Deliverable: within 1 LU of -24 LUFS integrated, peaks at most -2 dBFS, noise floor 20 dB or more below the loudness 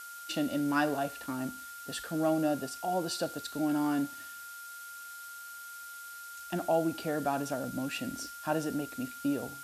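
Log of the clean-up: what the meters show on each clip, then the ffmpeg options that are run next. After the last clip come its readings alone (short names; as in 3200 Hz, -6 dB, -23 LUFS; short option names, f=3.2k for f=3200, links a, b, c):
steady tone 1400 Hz; tone level -44 dBFS; noise floor -46 dBFS; noise floor target -54 dBFS; loudness -34.0 LUFS; peak -17.0 dBFS; loudness target -24.0 LUFS
-> -af "bandreject=f=1.4k:w=30"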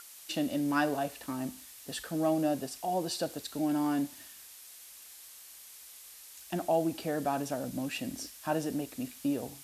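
steady tone none; noise floor -51 dBFS; noise floor target -53 dBFS
-> -af "afftdn=nr=6:nf=-51"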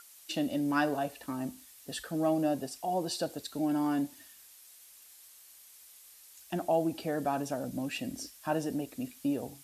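noise floor -56 dBFS; loudness -33.5 LUFS; peak -17.0 dBFS; loudness target -24.0 LUFS
-> -af "volume=9.5dB"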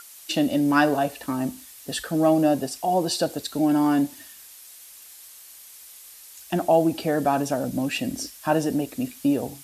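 loudness -24.0 LUFS; peak -7.5 dBFS; noise floor -46 dBFS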